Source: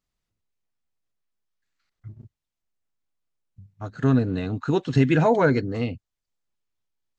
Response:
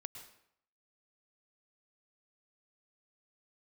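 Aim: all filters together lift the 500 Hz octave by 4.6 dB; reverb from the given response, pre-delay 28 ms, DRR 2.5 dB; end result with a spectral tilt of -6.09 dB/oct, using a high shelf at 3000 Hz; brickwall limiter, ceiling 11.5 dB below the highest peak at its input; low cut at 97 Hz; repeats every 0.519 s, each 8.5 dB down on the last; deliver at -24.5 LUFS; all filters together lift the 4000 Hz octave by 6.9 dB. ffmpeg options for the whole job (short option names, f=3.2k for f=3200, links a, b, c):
-filter_complex "[0:a]highpass=97,equalizer=f=500:t=o:g=5.5,highshelf=f=3k:g=3,equalizer=f=4k:t=o:g=6,alimiter=limit=-13.5dB:level=0:latency=1,aecho=1:1:519|1038|1557|2076:0.376|0.143|0.0543|0.0206,asplit=2[a][b];[1:a]atrim=start_sample=2205,adelay=28[c];[b][c]afir=irnorm=-1:irlink=0,volume=1.5dB[d];[a][d]amix=inputs=2:normalize=0,volume=-1dB"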